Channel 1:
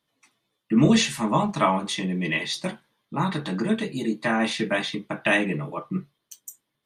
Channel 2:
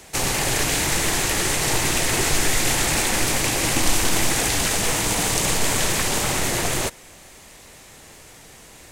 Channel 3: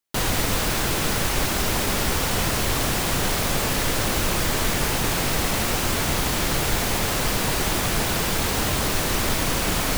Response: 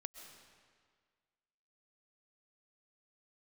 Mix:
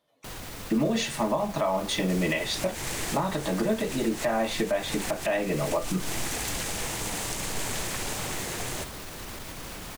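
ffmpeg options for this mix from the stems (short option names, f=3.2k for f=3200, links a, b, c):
-filter_complex "[0:a]equalizer=f=610:t=o:w=0.94:g=13,acompressor=threshold=-19dB:ratio=2,volume=0dB,asplit=2[a][b];[1:a]adelay=1950,volume=-11dB[c];[2:a]alimiter=limit=-17.5dB:level=0:latency=1:release=80,adelay=100,volume=-12dB[d];[b]apad=whole_len=479198[e];[c][e]sidechaincompress=threshold=-31dB:ratio=8:attack=16:release=112[f];[a][f][d]amix=inputs=3:normalize=0,alimiter=limit=-16.5dB:level=0:latency=1:release=286"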